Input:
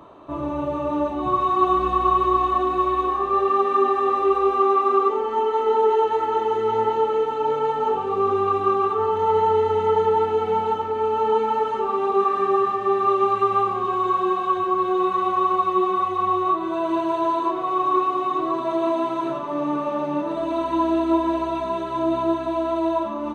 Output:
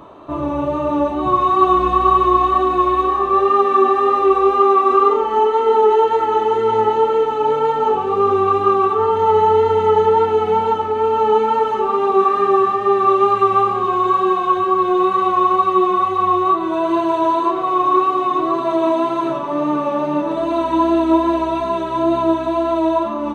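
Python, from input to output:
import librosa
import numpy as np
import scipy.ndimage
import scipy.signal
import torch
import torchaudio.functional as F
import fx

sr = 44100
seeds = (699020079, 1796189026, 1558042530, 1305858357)

y = fx.wow_flutter(x, sr, seeds[0], rate_hz=2.1, depth_cents=24.0)
y = fx.doubler(y, sr, ms=47.0, db=-5.5, at=(4.85, 5.47))
y = y * librosa.db_to_amplitude(5.5)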